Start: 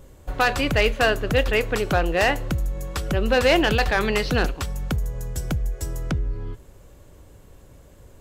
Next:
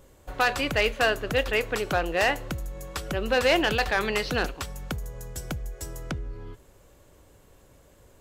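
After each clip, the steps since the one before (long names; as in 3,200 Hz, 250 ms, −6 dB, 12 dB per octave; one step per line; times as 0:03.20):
low-shelf EQ 260 Hz −7.5 dB
level −2.5 dB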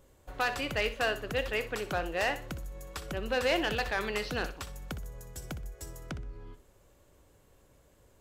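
flutter between parallel walls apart 10.6 metres, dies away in 0.29 s
level −7 dB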